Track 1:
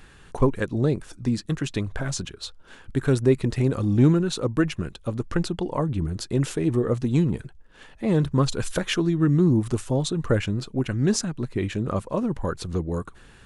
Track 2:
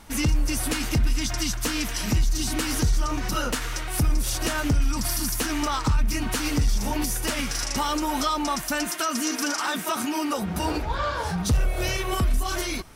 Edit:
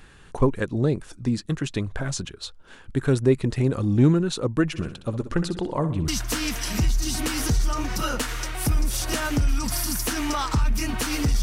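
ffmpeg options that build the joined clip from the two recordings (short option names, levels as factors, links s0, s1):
-filter_complex "[0:a]asplit=3[s0][s1][s2];[s0]afade=t=out:st=4.73:d=0.02[s3];[s1]aecho=1:1:63|126|189|252|315:0.266|0.128|0.0613|0.0294|0.0141,afade=t=in:st=4.73:d=0.02,afade=t=out:st=6.08:d=0.02[s4];[s2]afade=t=in:st=6.08:d=0.02[s5];[s3][s4][s5]amix=inputs=3:normalize=0,apad=whole_dur=11.42,atrim=end=11.42,atrim=end=6.082[s6];[1:a]atrim=start=1.408:end=6.75[s7];[s6][s7]acrossfade=d=0.004:c1=hsin:c2=hsin"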